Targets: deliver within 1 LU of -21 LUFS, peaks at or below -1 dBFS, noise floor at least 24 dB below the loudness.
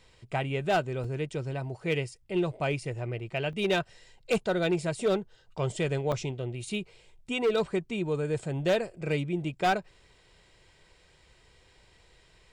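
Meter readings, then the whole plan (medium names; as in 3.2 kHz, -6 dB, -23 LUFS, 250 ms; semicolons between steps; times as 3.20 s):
clipped samples 0.8%; clipping level -20.0 dBFS; dropouts 3; longest dropout 3.9 ms; loudness -30.5 LUFS; peak level -20.0 dBFS; loudness target -21.0 LUFS
-> clip repair -20 dBFS; interpolate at 1.04/3.53/6.12 s, 3.9 ms; trim +9.5 dB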